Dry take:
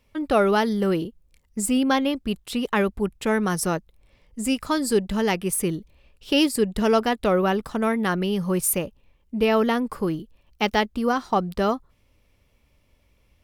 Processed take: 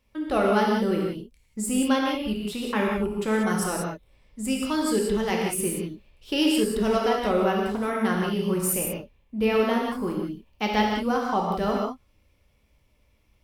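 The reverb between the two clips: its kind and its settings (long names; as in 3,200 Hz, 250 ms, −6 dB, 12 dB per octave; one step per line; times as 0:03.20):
reverb whose tail is shaped and stops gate 210 ms flat, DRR −2 dB
level −6 dB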